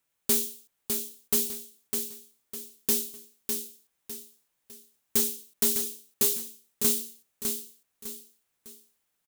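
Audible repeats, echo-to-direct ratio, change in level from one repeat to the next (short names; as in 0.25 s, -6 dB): 3, -5.0 dB, -9.0 dB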